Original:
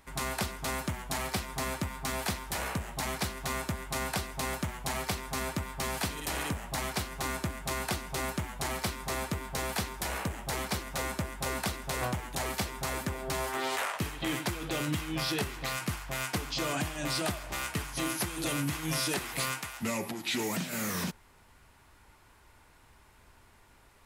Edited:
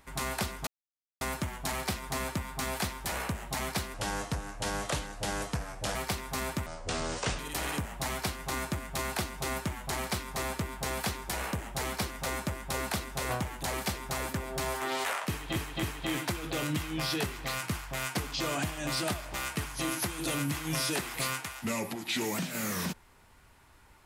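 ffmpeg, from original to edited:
ffmpeg -i in.wav -filter_complex "[0:a]asplit=8[link_01][link_02][link_03][link_04][link_05][link_06][link_07][link_08];[link_01]atrim=end=0.67,asetpts=PTS-STARTPTS,afade=type=out:start_time=0.666:duration=0.004:curve=hsin,apad=pad_dur=0.54[link_09];[link_02]atrim=start=0.67:end=3.404,asetpts=PTS-STARTPTS,afade=type=in:duration=0.004:curve=hsin[link_10];[link_03]atrim=start=3.4:end=4.95,asetpts=PTS-STARTPTS,asetrate=33957,aresample=44100[link_11];[link_04]atrim=start=4.946:end=5.664[link_12];[link_05]atrim=start=5.66:end=6.11,asetpts=PTS-STARTPTS,asetrate=27342,aresample=44100,atrim=end_sample=32008,asetpts=PTS-STARTPTS[link_13];[link_06]atrim=start=6.106:end=14.282[link_14];[link_07]atrim=start=14.008:end=14.282[link_15];[link_08]atrim=start=14.008[link_16];[link_09][link_10]concat=n=2:v=0:a=1[link_17];[link_17][link_11]acrossfade=duration=0.004:curve1=hsin:curve2=hsin[link_18];[link_18][link_12]acrossfade=duration=0.004:curve1=hsin:curve2=hsin[link_19];[link_19][link_13]acrossfade=duration=0.004:curve1=hsin:curve2=hsin[link_20];[link_20][link_14]acrossfade=duration=0.004:curve1=hsin:curve2=hsin[link_21];[link_21][link_15]acrossfade=duration=0.004:curve1=hsin:curve2=hsin[link_22];[link_22][link_16]acrossfade=duration=0.004:curve1=hsin:curve2=hsin" out.wav

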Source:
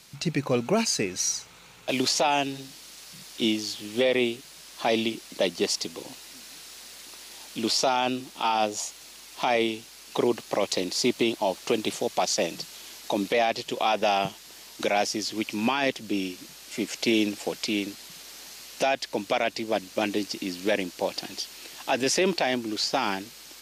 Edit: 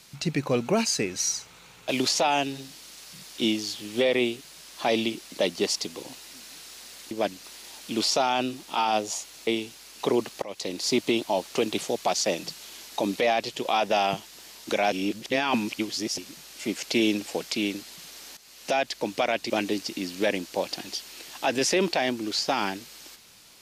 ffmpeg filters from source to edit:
ffmpeg -i in.wav -filter_complex "[0:a]asplit=9[link_01][link_02][link_03][link_04][link_05][link_06][link_07][link_08][link_09];[link_01]atrim=end=7.112[link_10];[link_02]atrim=start=19.618:end=19.952[link_11];[link_03]atrim=start=7.108:end=9.142[link_12];[link_04]atrim=start=9.588:end=10.54,asetpts=PTS-STARTPTS,afade=type=out:start_time=0.948:duration=0.004:curve=hsin:silence=0.11885[link_13];[link_05]atrim=start=10.54:end=15.042,asetpts=PTS-STARTPTS,afade=type=in:duration=0.48:silence=0.11885[link_14];[link_06]atrim=start=15.038:end=16.302,asetpts=PTS-STARTPTS,areverse[link_15];[link_07]atrim=start=16.298:end=18.49,asetpts=PTS-STARTPTS,afade=type=out:start_time=2.188:duration=0.004:curve=hsin:silence=0.211349[link_16];[link_08]atrim=start=18.49:end=19.622,asetpts=PTS-STARTPTS,afade=type=in:duration=0.42:silence=0.211349[link_17];[link_09]atrim=start=19.948[link_18];[link_10][link_11]acrossfade=duration=0.004:curve1=hsin:curve2=hsin[link_19];[link_19][link_12]acrossfade=duration=0.004:curve1=hsin:curve2=hsin[link_20];[link_13][link_14]concat=n=2:v=0:a=1[link_21];[link_20][link_21]acrossfade=duration=0.004:curve1=hsin:curve2=hsin[link_22];[link_22][link_15]acrossfade=duration=0.004:curve1=hsin:curve2=hsin[link_23];[link_16][link_17]concat=n=2:v=0:a=1[link_24];[link_23][link_24]acrossfade=duration=0.004:curve1=hsin:curve2=hsin[link_25];[link_25][link_18]acrossfade=duration=0.004:curve1=hsin:curve2=hsin" out.wav

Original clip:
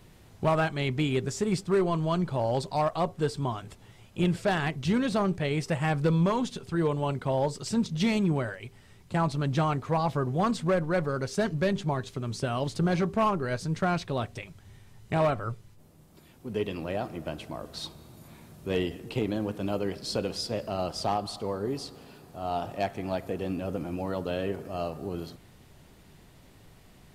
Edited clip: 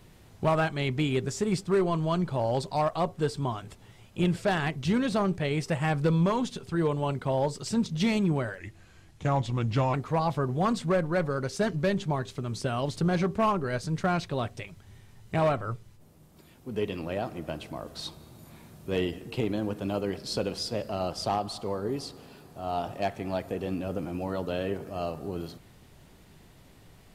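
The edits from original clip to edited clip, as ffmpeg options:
ffmpeg -i in.wav -filter_complex "[0:a]asplit=3[link_01][link_02][link_03];[link_01]atrim=end=8.584[link_04];[link_02]atrim=start=8.58:end=9.72,asetpts=PTS-STARTPTS,asetrate=37044,aresample=44100[link_05];[link_03]atrim=start=9.716[link_06];[link_04][link_05]acrossfade=duration=0.004:curve1=hsin:curve2=hsin[link_07];[link_07][link_06]acrossfade=duration=0.004:curve1=hsin:curve2=hsin" out.wav

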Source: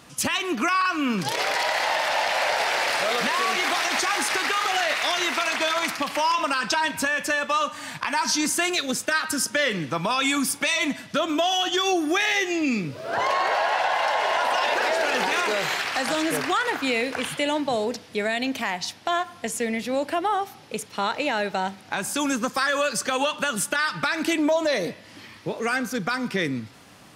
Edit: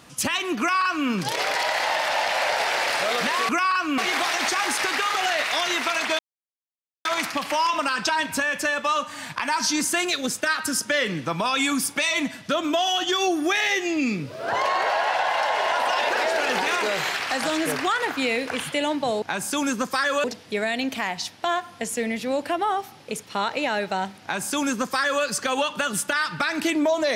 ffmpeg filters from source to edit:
ffmpeg -i in.wav -filter_complex "[0:a]asplit=6[link_01][link_02][link_03][link_04][link_05][link_06];[link_01]atrim=end=3.492[link_07];[link_02]atrim=start=0.588:end=1.082[link_08];[link_03]atrim=start=3.488:end=5.7,asetpts=PTS-STARTPTS,afade=type=out:start_time=2.208:duration=0.004:curve=hsin,apad=pad_dur=0.86[link_09];[link_04]atrim=start=5.7:end=17.872,asetpts=PTS-STARTPTS,afade=type=in:duration=0.004:curve=hsin[link_10];[link_05]atrim=start=21.848:end=22.872[link_11];[link_06]atrim=start=17.868[link_12];[link_07][link_08]acrossfade=duration=0.004:curve1=hsin:curve2=hsin[link_13];[link_09][link_10]concat=n=2:v=0:a=1[link_14];[link_13][link_14]acrossfade=duration=0.004:curve1=hsin:curve2=hsin[link_15];[link_15][link_11]acrossfade=duration=0.004:curve1=hsin:curve2=hsin[link_16];[link_16][link_12]acrossfade=duration=0.004:curve1=hsin:curve2=hsin" out.wav

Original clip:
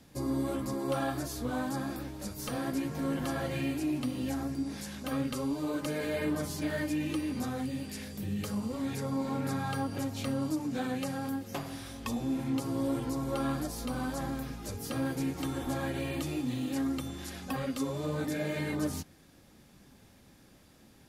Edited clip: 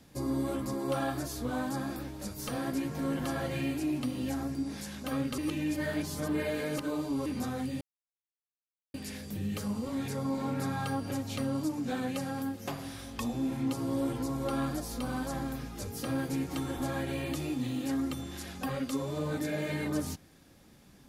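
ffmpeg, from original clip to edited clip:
ffmpeg -i in.wav -filter_complex "[0:a]asplit=4[link_01][link_02][link_03][link_04];[link_01]atrim=end=5.382[link_05];[link_02]atrim=start=5.378:end=7.262,asetpts=PTS-STARTPTS,areverse[link_06];[link_03]atrim=start=7.258:end=7.81,asetpts=PTS-STARTPTS,afade=type=out:start_time=0.548:duration=0.004:curve=hsin,apad=pad_dur=1.13[link_07];[link_04]atrim=start=7.81,asetpts=PTS-STARTPTS,afade=type=in:duration=0.004:curve=hsin[link_08];[link_05][link_06]acrossfade=duration=0.004:curve1=hsin:curve2=hsin[link_09];[link_07][link_08]concat=n=2:v=0:a=1[link_10];[link_09][link_10]acrossfade=duration=0.004:curve1=hsin:curve2=hsin" out.wav

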